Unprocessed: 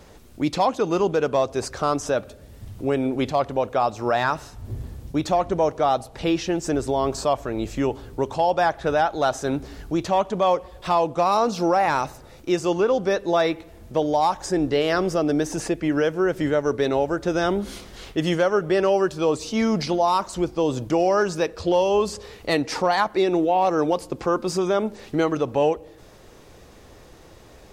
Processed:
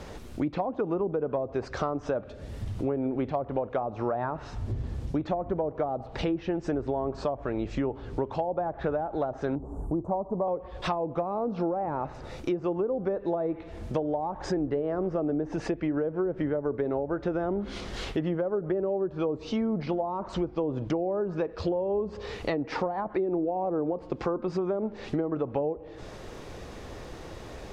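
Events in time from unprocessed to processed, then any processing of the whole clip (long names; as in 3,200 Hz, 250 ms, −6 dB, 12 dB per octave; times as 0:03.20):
0:09.55–0:10.48: elliptic band-stop filter 1,000–8,500 Hz
whole clip: treble cut that deepens with the level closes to 550 Hz, closed at −16 dBFS; high-shelf EQ 6,900 Hz −10 dB; downward compressor 3 to 1, threshold −36 dBFS; level +6 dB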